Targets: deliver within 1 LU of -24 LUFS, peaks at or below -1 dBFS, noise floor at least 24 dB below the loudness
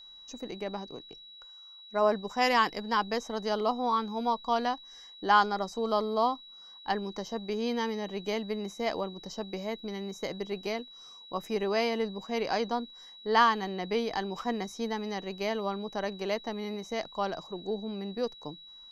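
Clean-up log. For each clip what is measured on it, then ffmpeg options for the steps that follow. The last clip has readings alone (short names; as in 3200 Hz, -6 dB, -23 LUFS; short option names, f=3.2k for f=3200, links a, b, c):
steady tone 3900 Hz; tone level -48 dBFS; loudness -31.5 LUFS; peak -11.0 dBFS; loudness target -24.0 LUFS
-> -af "bandreject=f=3.9k:w=30"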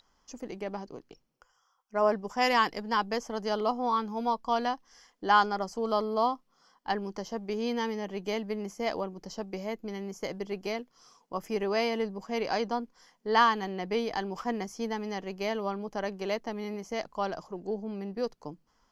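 steady tone none; loudness -31.5 LUFS; peak -11.0 dBFS; loudness target -24.0 LUFS
-> -af "volume=7.5dB"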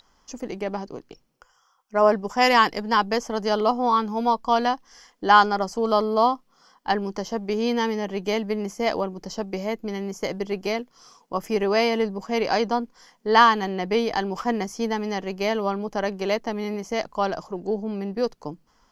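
loudness -24.0 LUFS; peak -3.5 dBFS; noise floor -64 dBFS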